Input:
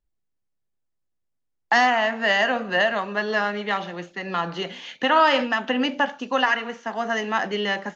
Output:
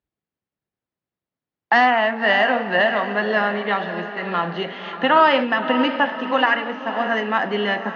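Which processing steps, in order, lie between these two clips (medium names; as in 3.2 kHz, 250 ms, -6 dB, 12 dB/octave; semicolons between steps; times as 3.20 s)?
band-pass 110–5000 Hz; distance through air 180 m; on a send: echo that smears into a reverb 586 ms, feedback 45%, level -10 dB; on the sum: trim +4 dB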